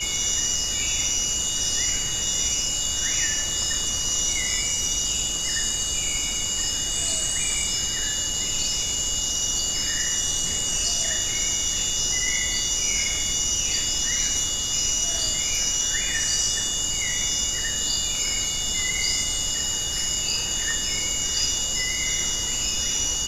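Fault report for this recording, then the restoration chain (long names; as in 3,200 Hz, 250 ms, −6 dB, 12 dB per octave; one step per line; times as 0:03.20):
whistle 2,900 Hz −30 dBFS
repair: notch filter 2,900 Hz, Q 30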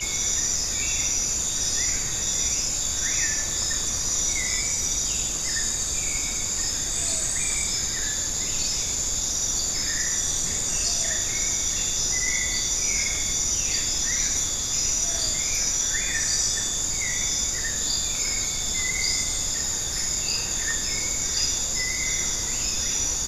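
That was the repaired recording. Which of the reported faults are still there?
none of them is left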